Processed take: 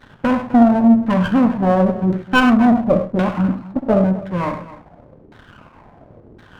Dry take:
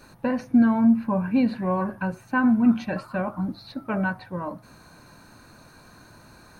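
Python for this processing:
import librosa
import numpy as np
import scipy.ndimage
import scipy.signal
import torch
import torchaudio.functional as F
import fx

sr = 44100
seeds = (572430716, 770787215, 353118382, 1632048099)

p1 = fx.low_shelf(x, sr, hz=240.0, db=6.0)
p2 = fx.leveller(p1, sr, passes=2)
p3 = fx.transient(p2, sr, attack_db=3, sustain_db=-10, at=(3.63, 4.18), fade=0.02)
p4 = fx.filter_lfo_lowpass(p3, sr, shape='saw_down', hz=0.94, low_hz=370.0, high_hz=2100.0, q=3.8)
p5 = p4 + fx.echo_multitap(p4, sr, ms=(64, 101, 257), db=(-10.0, -11.5, -16.5), dry=0)
p6 = fx.running_max(p5, sr, window=9)
y = p6 * 10.0 ** (-1.5 / 20.0)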